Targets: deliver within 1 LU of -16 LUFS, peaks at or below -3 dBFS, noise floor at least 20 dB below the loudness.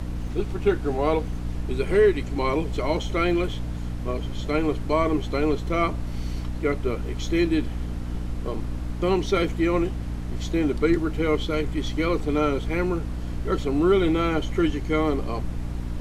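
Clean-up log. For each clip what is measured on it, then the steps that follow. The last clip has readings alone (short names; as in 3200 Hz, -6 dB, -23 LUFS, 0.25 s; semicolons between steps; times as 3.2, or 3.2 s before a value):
hum 60 Hz; harmonics up to 300 Hz; hum level -28 dBFS; noise floor -31 dBFS; noise floor target -46 dBFS; loudness -25.5 LUFS; peak -9.0 dBFS; loudness target -16.0 LUFS
-> notches 60/120/180/240/300 Hz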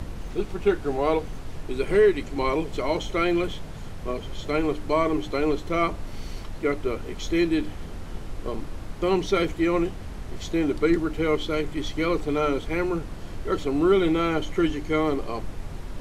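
hum none; noise floor -37 dBFS; noise floor target -46 dBFS
-> noise print and reduce 9 dB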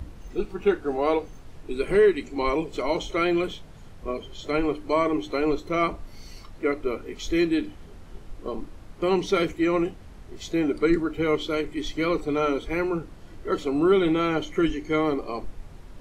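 noise floor -45 dBFS; noise floor target -46 dBFS
-> noise print and reduce 6 dB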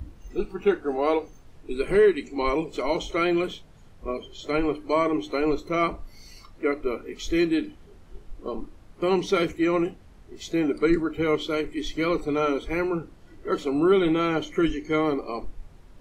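noise floor -50 dBFS; loudness -25.5 LUFS; peak -10.5 dBFS; loudness target -16.0 LUFS
-> gain +9.5 dB; limiter -3 dBFS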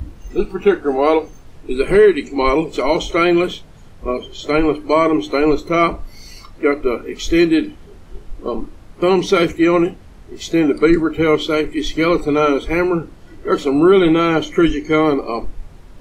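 loudness -16.5 LUFS; peak -3.0 dBFS; noise floor -40 dBFS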